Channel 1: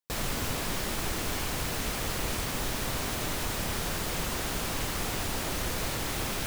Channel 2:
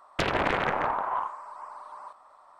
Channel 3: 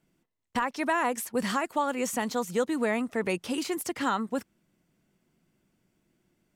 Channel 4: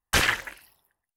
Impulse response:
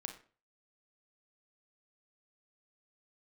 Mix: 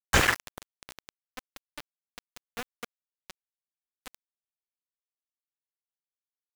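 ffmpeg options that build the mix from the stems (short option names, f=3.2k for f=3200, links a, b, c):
-filter_complex "[0:a]aeval=exprs='val(0)*pow(10,-32*if(lt(mod(-1.3*n/s,1),2*abs(-1.3)/1000),1-mod(-1.3*n/s,1)/(2*abs(-1.3)/1000),(mod(-1.3*n/s,1)-2*abs(-1.3)/1000)/(1-2*abs(-1.3)/1000))/20)':c=same,adelay=1100,volume=-13.5dB[a];[1:a]highshelf=f=2.6k:g=-9,volume=-15.5dB,asplit=2[b][c];[c]volume=-6dB[d];[2:a]adynamicequalizer=threshold=0.00631:dfrequency=170:dqfactor=0.86:tfrequency=170:tqfactor=0.86:attack=5:release=100:ratio=0.375:range=3:mode=boostabove:tftype=bell,acontrast=31,volume=-12.5dB[e];[3:a]equalizer=f=7.2k:w=3.2:g=10,volume=2.5dB,asplit=2[f][g];[g]volume=-19.5dB[h];[4:a]atrim=start_sample=2205[i];[d][h]amix=inputs=2:normalize=0[j];[j][i]afir=irnorm=-1:irlink=0[k];[a][b][e][f][k]amix=inputs=5:normalize=0,highshelf=f=3.1k:g=-12,aeval=exprs='val(0)*gte(abs(val(0)),0.0596)':c=same"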